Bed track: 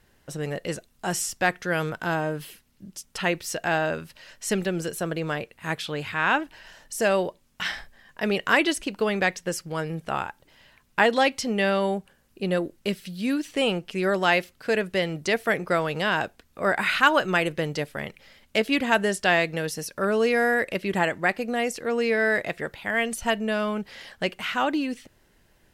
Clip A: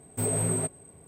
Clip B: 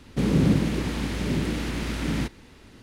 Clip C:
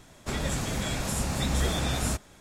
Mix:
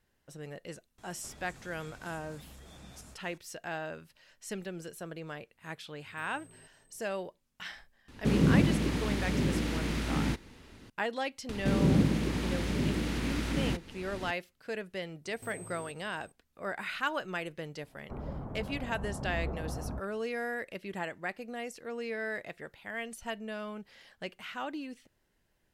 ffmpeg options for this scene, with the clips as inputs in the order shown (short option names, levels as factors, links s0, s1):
-filter_complex "[3:a]asplit=2[s0][s1];[1:a]asplit=2[s2][s3];[2:a]asplit=2[s4][s5];[0:a]volume=0.211[s6];[s0]acompressor=threshold=0.00708:ratio=6:attack=3.2:release=140:knee=1:detection=peak[s7];[s2]acompressor=threshold=0.0158:ratio=6:attack=3.2:release=140:knee=1:detection=peak[s8];[s5]acompressor=mode=upward:threshold=0.0631:ratio=2.5:attack=17:release=538:knee=2.83:detection=peak[s9];[s3]acompressor=threshold=0.0141:ratio=6:attack=3.2:release=140:knee=1:detection=peak[s10];[s1]lowpass=f=1100:w=0.5412,lowpass=f=1100:w=1.3066[s11];[s7]atrim=end=2.4,asetpts=PTS-STARTPTS,volume=0.447,afade=t=in:d=0.004:c=hsin,afade=t=out:st=2.396:d=0.004:c=hsin,adelay=980[s12];[s8]atrim=end=1.07,asetpts=PTS-STARTPTS,volume=0.133,afade=t=in:d=0.004:c=hsin,afade=t=out:st=1.066:d=0.004:c=hsin,adelay=6000[s13];[s4]atrim=end=2.82,asetpts=PTS-STARTPTS,volume=0.668,afade=t=in:d=0.004:c=hsin,afade=t=out:st=2.816:d=0.004:c=hsin,adelay=8080[s14];[s9]atrim=end=2.82,asetpts=PTS-STARTPTS,volume=0.596,afade=t=in:d=0.004:c=hsin,afade=t=out:st=2.816:d=0.004:c=hsin,adelay=11490[s15];[s10]atrim=end=1.07,asetpts=PTS-STARTPTS,volume=0.422,afade=t=in:d=0.004:c=hsin,afade=t=out:st=1.066:d=0.004:c=hsin,adelay=15250[s16];[s11]atrim=end=2.4,asetpts=PTS-STARTPTS,volume=0.376,afade=t=in:d=0.004:c=hsin,afade=t=out:st=2.396:d=0.004:c=hsin,adelay=17830[s17];[s6][s12][s13][s14][s15][s16][s17]amix=inputs=7:normalize=0"